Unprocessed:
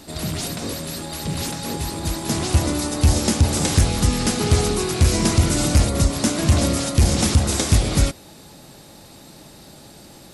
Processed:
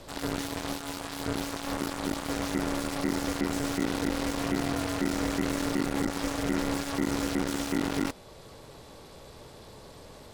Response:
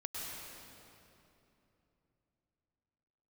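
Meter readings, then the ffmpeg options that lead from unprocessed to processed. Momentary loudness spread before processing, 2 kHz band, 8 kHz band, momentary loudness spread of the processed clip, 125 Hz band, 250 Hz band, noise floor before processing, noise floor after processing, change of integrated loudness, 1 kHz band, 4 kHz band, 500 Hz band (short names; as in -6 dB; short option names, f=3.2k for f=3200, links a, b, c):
9 LU, -5.0 dB, -15.0 dB, 19 LU, -19.0 dB, -6.0 dB, -45 dBFS, -49 dBFS, -10.5 dB, -6.0 dB, -11.5 dB, -7.5 dB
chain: -filter_complex "[0:a]asplit=2[a][b];[b]alimiter=limit=-17.5dB:level=0:latency=1:release=474,volume=-2dB[c];[a][c]amix=inputs=2:normalize=0,aeval=exprs='(tanh(12.6*val(0)+0.6)-tanh(0.6))/12.6':c=same,aeval=exprs='val(0)*sin(2*PI*280*n/s)':c=same,aeval=exprs='0.126*(cos(1*acos(clip(val(0)/0.126,-1,1)))-cos(1*PI/2))+0.0158*(cos(3*acos(clip(val(0)/0.126,-1,1)))-cos(3*PI/2))+0.0282*(cos(7*acos(clip(val(0)/0.126,-1,1)))-cos(7*PI/2))':c=same,aemphasis=mode=reproduction:type=cd,volume=-1dB"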